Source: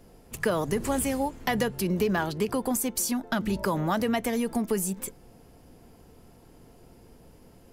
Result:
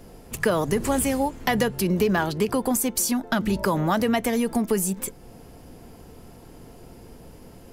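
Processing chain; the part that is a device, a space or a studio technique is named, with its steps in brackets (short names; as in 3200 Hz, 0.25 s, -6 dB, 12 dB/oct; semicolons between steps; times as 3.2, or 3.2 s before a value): parallel compression (in parallel at -4 dB: compressor, threshold -44 dBFS, peak gain reduction 21 dB); on the sum: gain +3.5 dB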